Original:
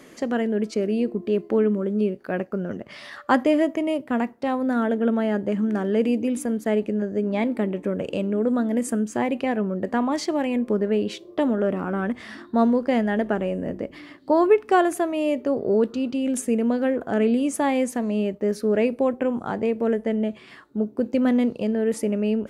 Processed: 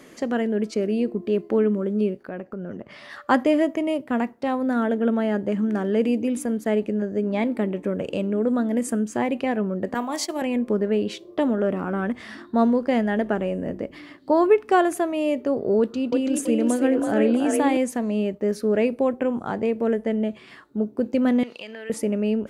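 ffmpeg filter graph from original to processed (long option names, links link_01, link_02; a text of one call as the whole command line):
ffmpeg -i in.wav -filter_complex "[0:a]asettb=1/sr,asplit=3[link_01][link_02][link_03];[link_01]atrim=end=2.234[link_04];[link_02]atrim=start=2.23:end=3.1,asetpts=PTS-STARTPTS,afade=type=in:duration=0.004:curve=qsin,afade=type=out:start_time=0.866:duration=0.004:curve=qsin,highshelf=frequency=3000:gain=-8,acompressor=threshold=-29dB:ratio=5:attack=3.2:release=140:knee=1:detection=peak[link_05];[link_03]atrim=start=3.096[link_06];[link_04][link_05]acrossfade=duration=0.004:curve1=hsin:curve2=qsin[link_07];[link_07][link_06]acrossfade=duration=0.004:curve1=qsin:curve2=hsin,asettb=1/sr,asplit=3[link_08][link_09][link_10];[link_08]atrim=end=9.944[link_11];[link_09]atrim=start=9.94:end=10.42,asetpts=PTS-STARTPTS,afade=type=in:duration=0.004:curve=qsin,afade=type=out:start_time=0.476:duration=0.004:curve=qsin,aemphasis=mode=production:type=bsi,bandreject=frequency=55.05:width_type=h:width=4,bandreject=frequency=110.1:width_type=h:width=4,bandreject=frequency=165.15:width_type=h:width=4,bandreject=frequency=220.2:width_type=h:width=4,bandreject=frequency=275.25:width_type=h:width=4,bandreject=frequency=330.3:width_type=h:width=4,bandreject=frequency=385.35:width_type=h:width=4,bandreject=frequency=440.4:width_type=h:width=4,bandreject=frequency=495.45:width_type=h:width=4,bandreject=frequency=550.5:width_type=h:width=4,bandreject=frequency=605.55:width_type=h:width=4,bandreject=frequency=660.6:width_type=h:width=4,bandreject=frequency=715.65:width_type=h:width=4,bandreject=frequency=770.7:width_type=h:width=4,bandreject=frequency=825.75:width_type=h:width=4,bandreject=frequency=880.8:width_type=h:width=4,bandreject=frequency=935.85:width_type=h:width=4,bandreject=frequency=990.9:width_type=h:width=4,bandreject=frequency=1045.95:width_type=h:width=4,bandreject=frequency=1101:width_type=h:width=4,bandreject=frequency=1156.05:width_type=h:width=4,agate=range=-33dB:threshold=-24dB:ratio=3:release=100:detection=peak[link_12];[link_10]atrim=start=10.416[link_13];[link_11][link_12]acrossfade=duration=0.004:curve1=hsin:curve2=qsin[link_14];[link_14][link_13]acrossfade=duration=0.004:curve1=qsin:curve2=hsin,asettb=1/sr,asplit=3[link_15][link_16][link_17];[link_15]atrim=end=15.794[link_18];[link_16]atrim=start=15.79:end=17.77,asetpts=PTS-STARTPTS,afade=type=in:duration=0.004:curve=qsin,afade=type=out:start_time=1.976:duration=0.004:curve=qsin,highpass=45,asplit=5[link_19][link_20][link_21][link_22][link_23];[link_20]adelay=330,afreqshift=39,volume=-3.5dB[link_24];[link_21]adelay=660,afreqshift=78,volume=-12.9dB[link_25];[link_22]adelay=990,afreqshift=117,volume=-22.2dB[link_26];[link_23]adelay=1320,afreqshift=156,volume=-31.6dB[link_27];[link_19][link_24][link_25][link_26][link_27]amix=inputs=5:normalize=0,atrim=end_sample=87318[link_28];[link_17]atrim=start=17.766[link_29];[link_18][link_28]acrossfade=duration=0.004:curve1=hsin:curve2=qsin[link_30];[link_30][link_29]acrossfade=duration=0.004:curve1=qsin:curve2=hsin,asettb=1/sr,asplit=3[link_31][link_32][link_33];[link_31]atrim=end=21.434[link_34];[link_32]atrim=start=21.43:end=21.9,asetpts=PTS-STARTPTS,afade=type=in:duration=0.004:curve=qsin,afade=type=out:start_time=0.466:duration=0.004:curve=qsin,highpass=frequency=1100:poles=1,equalizer=frequency=2700:width=0.48:gain=13.5,acompressor=threshold=-35dB:ratio=3:attack=3.2:release=140:knee=1:detection=peak[link_35];[link_33]atrim=start=21.896[link_36];[link_34][link_35]acrossfade=duration=0.004:curve1=hsin:curve2=qsin[link_37];[link_37][link_36]acrossfade=duration=0.004:curve1=qsin:curve2=hsin" out.wav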